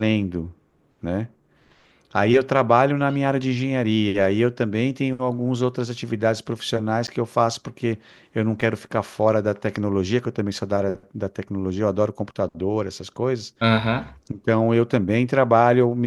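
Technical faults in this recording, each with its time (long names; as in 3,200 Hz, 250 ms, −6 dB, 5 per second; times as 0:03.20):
0:07.07–0:07.08: drop-out 9.7 ms
0:08.61: drop-out 3.7 ms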